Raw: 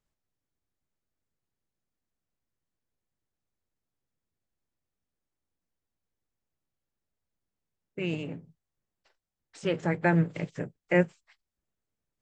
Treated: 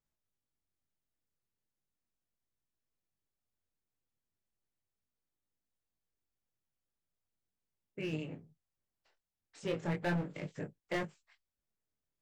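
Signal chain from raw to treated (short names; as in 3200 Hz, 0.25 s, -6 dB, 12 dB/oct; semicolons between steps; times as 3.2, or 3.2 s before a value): overloaded stage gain 23 dB; chorus 0.37 Hz, delay 19.5 ms, depth 5.5 ms; gain -3 dB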